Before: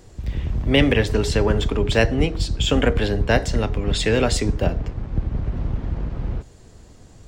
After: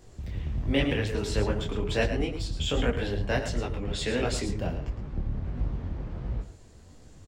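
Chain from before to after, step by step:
in parallel at −1.5 dB: downward compressor, threshold −26 dBFS, peak gain reduction 14 dB
on the sum: single-tap delay 111 ms −9.5 dB
micro pitch shift up and down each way 49 cents
level −7.5 dB

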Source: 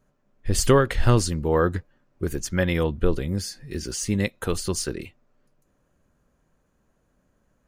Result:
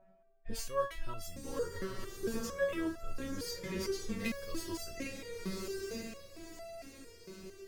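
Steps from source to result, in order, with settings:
gap after every zero crossing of 0.054 ms
steady tone 670 Hz −50 dBFS
parametric band 770 Hz −5 dB 0.28 octaves
reversed playback
downward compressor 5 to 1, threshold −30 dBFS, peak gain reduction 16.5 dB
reversed playback
low-pass that shuts in the quiet parts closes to 2,200 Hz, open at −30 dBFS
on a send: feedback delay with all-pass diffusion 1,007 ms, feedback 50%, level −4.5 dB
on the sum: step-sequenced resonator 4.4 Hz 190–670 Hz
level +11 dB

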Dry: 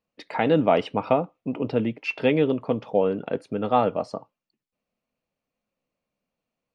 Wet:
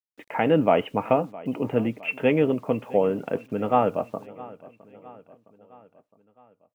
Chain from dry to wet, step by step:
Butterworth low-pass 3,100 Hz 72 dB per octave
bit reduction 10 bits
on a send: repeating echo 662 ms, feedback 55%, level −20 dB

